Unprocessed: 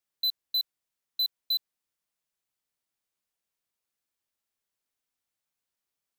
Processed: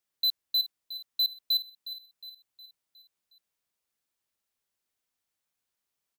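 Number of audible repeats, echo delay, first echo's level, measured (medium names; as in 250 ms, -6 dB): 4, 362 ms, -13.5 dB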